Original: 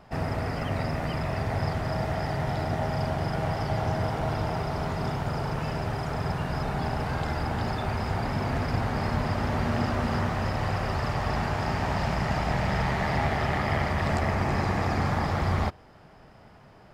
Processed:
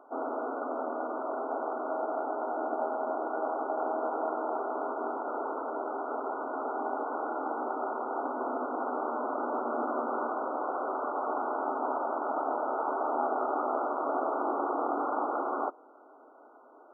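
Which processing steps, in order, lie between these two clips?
linear-phase brick-wall band-pass 250–1,500 Hz

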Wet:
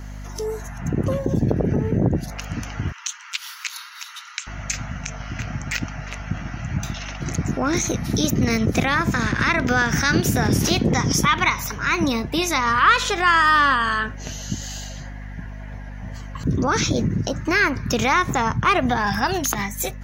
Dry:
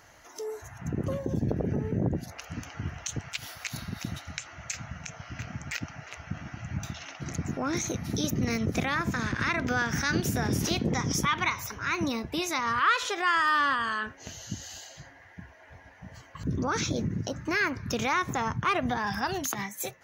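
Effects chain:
mains hum 50 Hz, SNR 12 dB
0:02.92–0:04.47: Chebyshev high-pass with heavy ripple 920 Hz, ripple 3 dB
tape wow and flutter 20 cents
level +8.5 dB

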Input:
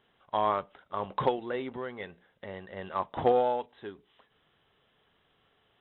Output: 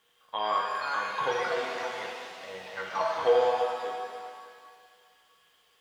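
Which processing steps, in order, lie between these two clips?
high-pass filter 110 Hz 12 dB per octave
tilt shelving filter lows −8 dB, about 840 Hz
bit reduction 11 bits
hollow resonant body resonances 480/1,100/3,200 Hz, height 12 dB, ringing for 95 ms
delay with pitch and tempo change per echo 559 ms, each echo +5 semitones, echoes 2, each echo −6 dB
reverb with rising layers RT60 2 s, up +7 semitones, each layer −8 dB, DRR −1 dB
level −6.5 dB

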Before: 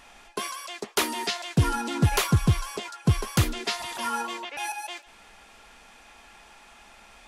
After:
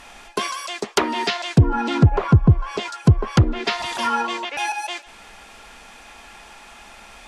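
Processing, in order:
treble cut that deepens with the level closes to 570 Hz, closed at −17.5 dBFS
level +8 dB

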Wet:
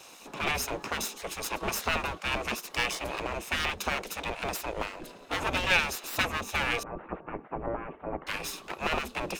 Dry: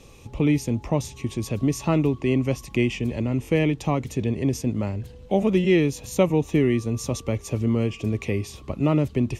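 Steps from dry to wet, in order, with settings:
lower of the sound and its delayed copy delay 0.77 ms
mains-hum notches 50/100/150/200/250/300 Hz
gate on every frequency bin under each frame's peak −15 dB weak
0:06.83–0:08.27: Gaussian smoothing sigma 5.8 samples
level +6 dB

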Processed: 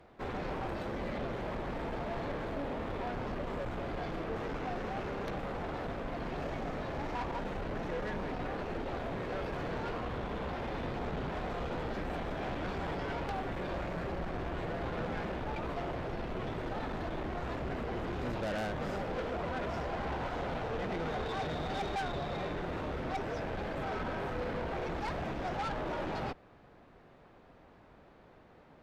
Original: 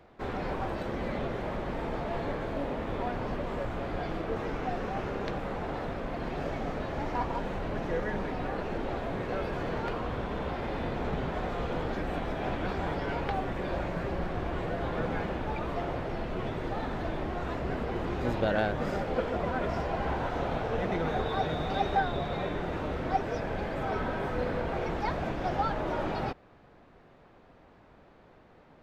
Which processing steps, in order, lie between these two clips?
tube saturation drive 32 dB, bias 0.4

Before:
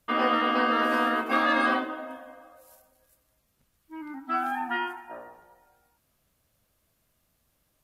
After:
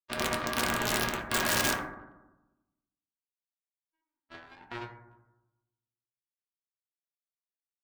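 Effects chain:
treble cut that deepens with the level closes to 2,400 Hz, closed at −20 dBFS
EQ curve with evenly spaced ripples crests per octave 1.4, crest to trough 11 dB
in parallel at −4 dB: slack as between gear wheels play −23.5 dBFS
on the sum: power curve on the samples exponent 3
wrap-around overflow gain 21 dB
on a send at −1 dB: convolution reverb RT60 1.0 s, pre-delay 4 ms
on the sum: level +5 dB

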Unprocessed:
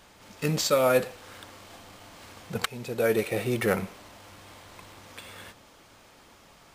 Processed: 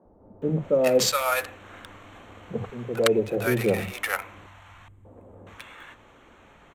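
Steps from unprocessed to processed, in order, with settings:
adaptive Wiener filter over 9 samples
0:04.46–0:05.05: drawn EQ curve 110 Hz 0 dB, 670 Hz −22 dB, 5,300 Hz −28 dB, 8,200 Hz −12 dB
three-band delay without the direct sound mids, lows, highs 50/420 ms, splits 160/740 Hz
level +4.5 dB

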